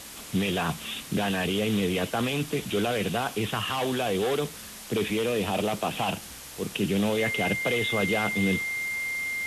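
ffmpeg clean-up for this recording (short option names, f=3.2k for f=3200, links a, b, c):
-af "bandreject=f=2.1k:w=30,afwtdn=0.0089"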